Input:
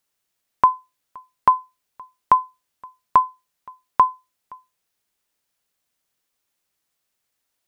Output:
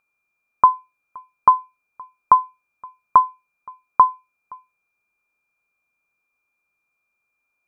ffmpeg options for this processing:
-af "aeval=exprs='val(0)+0.00178*sin(2*PI*2400*n/s)':c=same,highshelf=f=1.7k:t=q:w=3:g=-9.5,volume=-2.5dB"

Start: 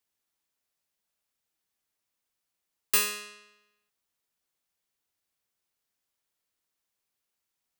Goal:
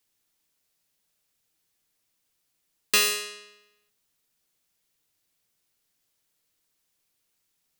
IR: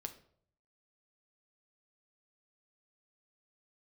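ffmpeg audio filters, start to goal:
-filter_complex "[0:a]acrossover=split=6300[a][b];[b]acompressor=threshold=-32dB:ratio=4:attack=1:release=60[c];[a][c]amix=inputs=2:normalize=0,asplit=2[d][e];[e]equalizer=f=980:t=o:w=1.6:g=-11.5[f];[1:a]atrim=start_sample=2205,asetrate=48510,aresample=44100[g];[f][g]afir=irnorm=-1:irlink=0,volume=8dB[h];[d][h]amix=inputs=2:normalize=0,volume=1dB"

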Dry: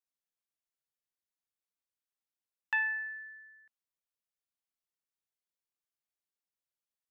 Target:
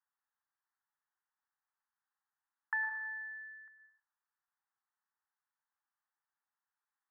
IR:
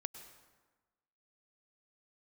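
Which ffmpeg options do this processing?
-filter_complex "[0:a]asplit=2[a][b];[b]alimiter=level_in=7.5dB:limit=-24dB:level=0:latency=1,volume=-7.5dB,volume=-0.5dB[c];[a][c]amix=inputs=2:normalize=0,acompressor=threshold=-46dB:ratio=2,asuperpass=centerf=1200:order=12:qfactor=1.1[d];[1:a]atrim=start_sample=2205,afade=t=out:st=0.4:d=0.01,atrim=end_sample=18081[e];[d][e]afir=irnorm=-1:irlink=0,volume=7dB"

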